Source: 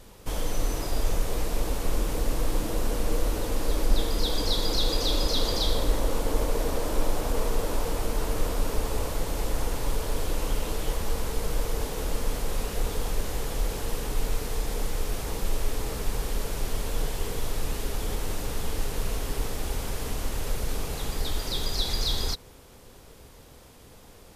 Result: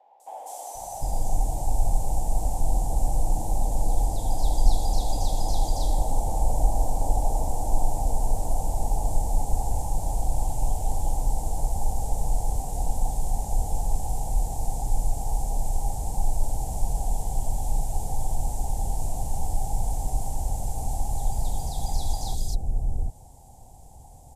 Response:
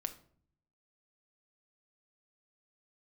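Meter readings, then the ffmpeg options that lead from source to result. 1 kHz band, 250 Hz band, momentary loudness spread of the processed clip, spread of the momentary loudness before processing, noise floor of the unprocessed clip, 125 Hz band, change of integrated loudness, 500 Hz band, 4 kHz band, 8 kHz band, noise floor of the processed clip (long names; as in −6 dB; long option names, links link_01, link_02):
+5.0 dB, −4.5 dB, 4 LU, 6 LU, −50 dBFS, +4.0 dB, +1.0 dB, −5.5 dB, −13.0 dB, +0.5 dB, −46 dBFS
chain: -filter_complex "[0:a]firequalizer=gain_entry='entry(120,0);entry(210,-7);entry(430,-14);entry(790,9);entry(1200,-28);entry(2200,-21);entry(4400,-16);entry(7500,0);entry(15000,-12)':delay=0.05:min_phase=1,acrossover=split=540|2700[link_01][link_02][link_03];[link_03]adelay=200[link_04];[link_01]adelay=750[link_05];[link_05][link_02][link_04]amix=inputs=3:normalize=0,volume=4dB"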